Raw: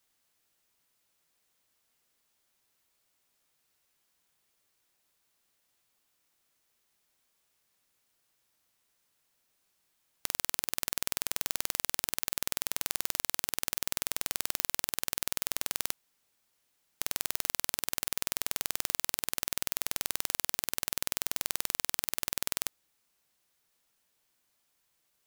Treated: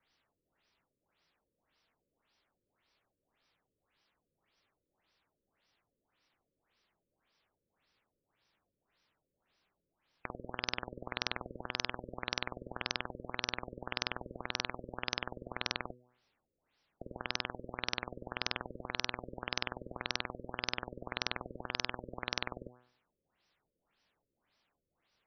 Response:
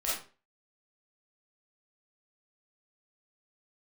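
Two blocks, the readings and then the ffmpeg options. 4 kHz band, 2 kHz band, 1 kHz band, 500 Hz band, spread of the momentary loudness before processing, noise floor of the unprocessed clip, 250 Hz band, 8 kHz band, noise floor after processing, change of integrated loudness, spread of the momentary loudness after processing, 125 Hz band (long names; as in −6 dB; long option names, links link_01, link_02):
−2.5 dB, 0.0 dB, +1.5 dB, +3.0 dB, 1 LU, −76 dBFS, +3.0 dB, −18.0 dB, below −85 dBFS, −7.5 dB, 5 LU, +2.5 dB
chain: -af "bandreject=frequency=123.8:width_type=h:width=4,bandreject=frequency=247.6:width_type=h:width=4,bandreject=frequency=371.4:width_type=h:width=4,bandreject=frequency=495.2:width_type=h:width=4,bandreject=frequency=619:width_type=h:width=4,bandreject=frequency=742.8:width_type=h:width=4,bandreject=frequency=866.6:width_type=h:width=4,bandreject=frequency=990.4:width_type=h:width=4,bandreject=frequency=1114.2:width_type=h:width=4,bandreject=frequency=1238:width_type=h:width=4,bandreject=frequency=1361.8:width_type=h:width=4,bandreject=frequency=1485.6:width_type=h:width=4,bandreject=frequency=1609.4:width_type=h:width=4,bandreject=frequency=1733.2:width_type=h:width=4,afftfilt=real='re*lt(b*sr/1024,560*pow(6100/560,0.5+0.5*sin(2*PI*1.8*pts/sr)))':imag='im*lt(b*sr/1024,560*pow(6100/560,0.5+0.5*sin(2*PI*1.8*pts/sr)))':win_size=1024:overlap=0.75,volume=3.5dB"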